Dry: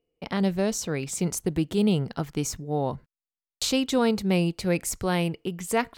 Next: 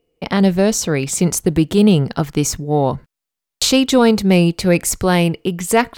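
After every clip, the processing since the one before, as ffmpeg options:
-af "acontrast=84,volume=1.58"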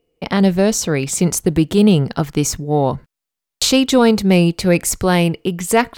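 -af anull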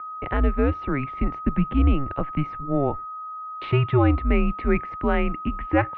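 -af "aeval=exprs='val(0)+0.0501*sin(2*PI*1400*n/s)':c=same,highpass=f=160:t=q:w=0.5412,highpass=f=160:t=q:w=1.307,lowpass=f=2600:t=q:w=0.5176,lowpass=f=2600:t=q:w=0.7071,lowpass=f=2600:t=q:w=1.932,afreqshift=-140,volume=0.501"

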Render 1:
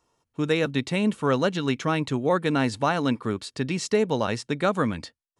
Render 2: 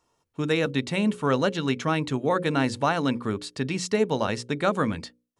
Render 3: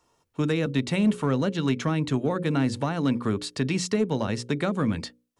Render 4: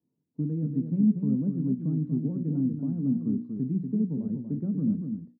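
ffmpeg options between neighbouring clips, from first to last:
-af "bandreject=f=60:t=h:w=6,bandreject=f=120:t=h:w=6,bandreject=f=180:t=h:w=6,bandreject=f=240:t=h:w=6,bandreject=f=300:t=h:w=6,bandreject=f=360:t=h:w=6,bandreject=f=420:t=h:w=6,bandreject=f=480:t=h:w=6,bandreject=f=540:t=h:w=6"
-filter_complex "[0:a]acrossover=split=310[s0][s1];[s1]acompressor=threshold=0.0282:ratio=6[s2];[s0][s2]amix=inputs=2:normalize=0,asplit=2[s3][s4];[s4]volume=11.9,asoftclip=hard,volume=0.0841,volume=0.501[s5];[s3][s5]amix=inputs=2:normalize=0"
-af "acrusher=bits=3:mode=log:mix=0:aa=0.000001,asuperpass=centerf=200:order=4:qfactor=1.5,aecho=1:1:238:0.473"

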